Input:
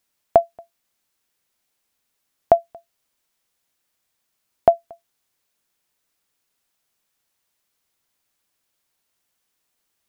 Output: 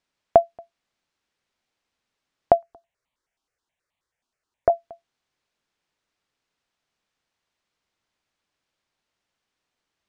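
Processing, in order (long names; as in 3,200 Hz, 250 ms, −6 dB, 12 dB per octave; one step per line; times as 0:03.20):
high-frequency loss of the air 110 metres
0:02.52–0:04.70: step-sequenced phaser 9.4 Hz 520–1,500 Hz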